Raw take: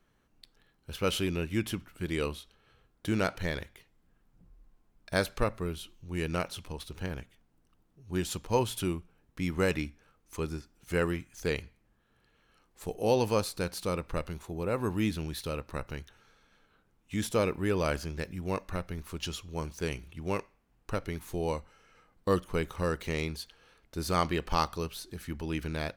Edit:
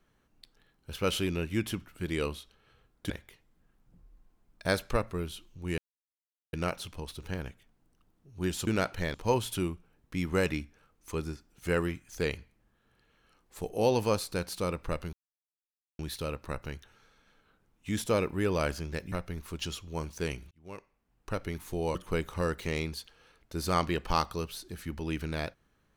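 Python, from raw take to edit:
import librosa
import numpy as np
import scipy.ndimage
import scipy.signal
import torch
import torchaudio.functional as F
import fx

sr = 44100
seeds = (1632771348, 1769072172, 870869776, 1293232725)

y = fx.edit(x, sr, fx.move(start_s=3.1, length_s=0.47, to_s=8.39),
    fx.insert_silence(at_s=6.25, length_s=0.75),
    fx.silence(start_s=14.38, length_s=0.86),
    fx.cut(start_s=18.37, length_s=0.36),
    fx.fade_in_span(start_s=20.12, length_s=0.93),
    fx.cut(start_s=21.56, length_s=0.81), tone=tone)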